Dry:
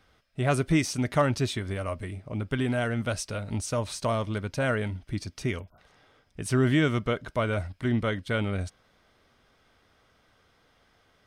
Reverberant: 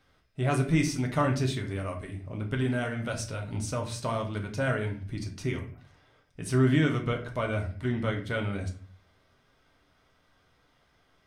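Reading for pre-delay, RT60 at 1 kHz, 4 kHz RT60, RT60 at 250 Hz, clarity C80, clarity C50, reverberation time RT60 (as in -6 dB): 7 ms, 0.40 s, 0.35 s, 0.65 s, 14.5 dB, 10.0 dB, 0.45 s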